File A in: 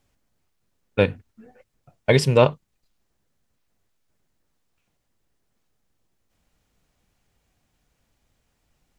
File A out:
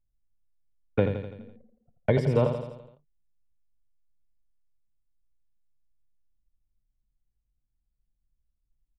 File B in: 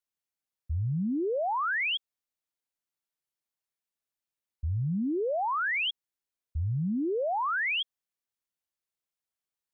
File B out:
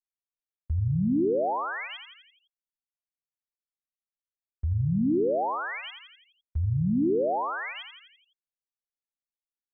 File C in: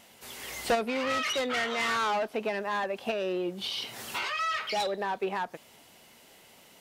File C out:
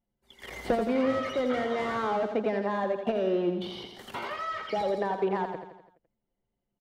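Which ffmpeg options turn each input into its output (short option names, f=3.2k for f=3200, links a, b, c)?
-filter_complex "[0:a]anlmdn=1,acrossover=split=350|730[a][b][c];[a]acompressor=threshold=-31dB:ratio=4[d];[b]acompressor=threshold=-36dB:ratio=4[e];[c]acompressor=threshold=-44dB:ratio=4[f];[d][e][f]amix=inputs=3:normalize=0,agate=range=-6dB:threshold=-60dB:ratio=16:detection=peak,aecho=1:1:84|168|252|336|420|504:0.398|0.215|0.116|0.0627|0.0339|0.0183,acrossover=split=3100[g][h];[h]acompressor=threshold=-58dB:ratio=4:attack=1:release=60[i];[g][i]amix=inputs=2:normalize=0,bandreject=f=2.6k:w=7.8,volume=6dB"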